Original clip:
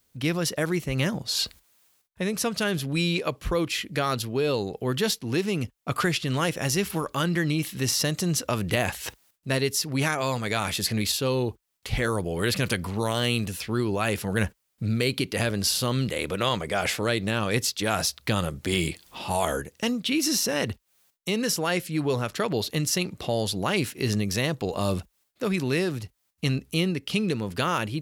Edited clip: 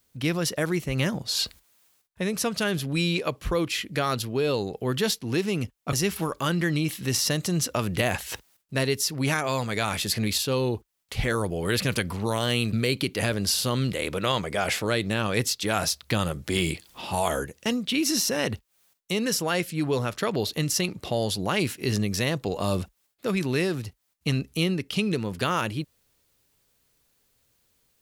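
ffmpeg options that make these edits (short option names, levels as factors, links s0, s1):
-filter_complex "[0:a]asplit=3[s0][s1][s2];[s0]atrim=end=5.932[s3];[s1]atrim=start=6.668:end=13.472[s4];[s2]atrim=start=14.898[s5];[s3][s4]acrossfade=d=0.004:c1=hsin:c2=hsin[s6];[s6][s5]acrossfade=d=0.004:c1=hsin:c2=hsin"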